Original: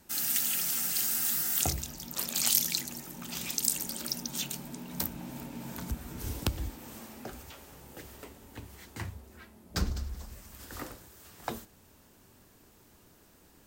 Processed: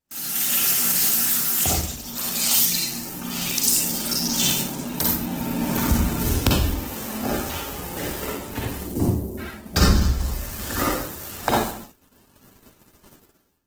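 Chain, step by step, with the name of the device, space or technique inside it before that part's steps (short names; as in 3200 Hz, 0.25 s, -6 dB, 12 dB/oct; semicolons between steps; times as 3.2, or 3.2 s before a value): 8.77–9.38 EQ curve 130 Hz 0 dB, 300 Hz +8 dB, 660 Hz -1 dB, 1800 Hz -25 dB, 11000 Hz -1 dB; speakerphone in a meeting room (reverb RT60 0.60 s, pre-delay 41 ms, DRR -4 dB; AGC gain up to 15 dB; gate -37 dBFS, range -24 dB; gain -1 dB; Opus 16 kbps 48000 Hz)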